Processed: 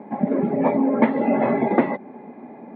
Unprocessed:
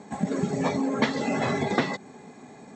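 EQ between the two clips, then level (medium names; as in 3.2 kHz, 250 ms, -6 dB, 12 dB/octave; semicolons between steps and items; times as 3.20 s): distance through air 170 m; cabinet simulation 190–2700 Hz, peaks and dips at 230 Hz +7 dB, 330 Hz +7 dB, 580 Hz +9 dB, 890 Hz +8 dB, 2.2 kHz +6 dB; tilt shelf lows +3.5 dB; 0.0 dB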